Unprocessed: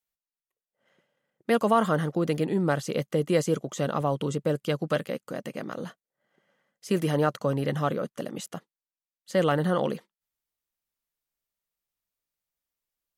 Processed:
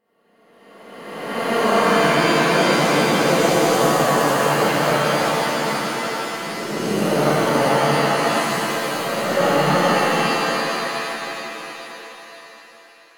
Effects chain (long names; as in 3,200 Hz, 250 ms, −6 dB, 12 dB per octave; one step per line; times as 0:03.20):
peak hold with a rise ahead of every peak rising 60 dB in 1.83 s
echo with a time of its own for lows and highs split 640 Hz, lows 179 ms, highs 525 ms, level −14 dB
reverb with rising layers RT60 3.5 s, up +7 semitones, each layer −2 dB, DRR −9.5 dB
level −7 dB